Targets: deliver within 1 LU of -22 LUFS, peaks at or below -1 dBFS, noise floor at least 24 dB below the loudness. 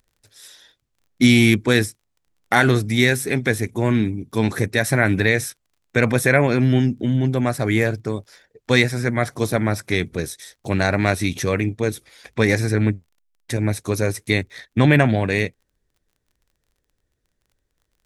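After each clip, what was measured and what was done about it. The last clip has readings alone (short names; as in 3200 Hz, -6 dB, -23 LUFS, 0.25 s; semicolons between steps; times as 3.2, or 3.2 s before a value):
ticks 25/s; loudness -19.5 LUFS; peak -1.0 dBFS; loudness target -22.0 LUFS
-> de-click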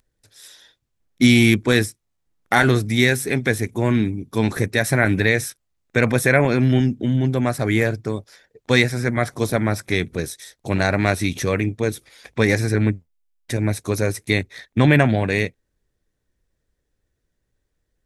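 ticks 0.11/s; loudness -19.5 LUFS; peak -1.0 dBFS; loudness target -22.0 LUFS
-> gain -2.5 dB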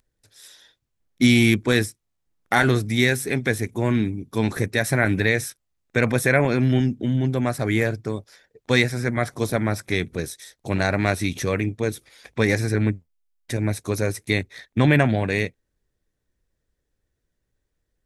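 loudness -22.0 LUFS; peak -3.5 dBFS; noise floor -77 dBFS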